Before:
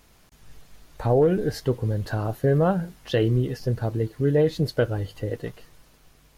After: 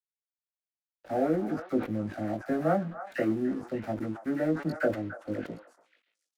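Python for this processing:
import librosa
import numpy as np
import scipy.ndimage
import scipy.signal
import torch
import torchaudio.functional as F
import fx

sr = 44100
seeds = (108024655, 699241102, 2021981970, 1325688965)

p1 = fx.wiener(x, sr, points=41)
p2 = scipy.signal.sosfilt(scipy.signal.butter(4, 130.0, 'highpass', fs=sr, output='sos'), p1)
p3 = fx.rider(p2, sr, range_db=4, speed_s=0.5)
p4 = p2 + (p3 * 10.0 ** (-1.0 / 20.0))
p5 = fx.fixed_phaser(p4, sr, hz=660.0, stages=8)
p6 = fx.dispersion(p5, sr, late='lows', ms=58.0, hz=1100.0)
p7 = np.sign(p6) * np.maximum(np.abs(p6) - 10.0 ** (-45.5 / 20.0), 0.0)
p8 = fx.doubler(p7, sr, ms=19.0, db=-3.5)
p9 = p8 + fx.echo_stepped(p8, sr, ms=291, hz=1100.0, octaves=1.4, feedback_pct=70, wet_db=-7, dry=0)
p10 = fx.sustainer(p9, sr, db_per_s=150.0)
y = p10 * 10.0 ** (-6.0 / 20.0)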